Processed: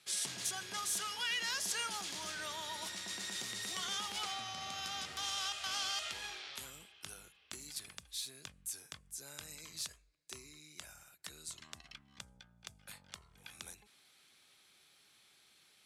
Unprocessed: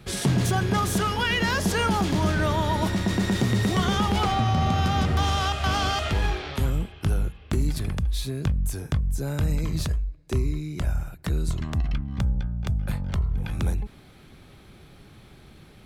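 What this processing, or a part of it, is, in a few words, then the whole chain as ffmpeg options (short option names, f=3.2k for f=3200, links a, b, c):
piezo pickup straight into a mixer: -af "lowpass=8.7k,aderivative,volume=-1dB"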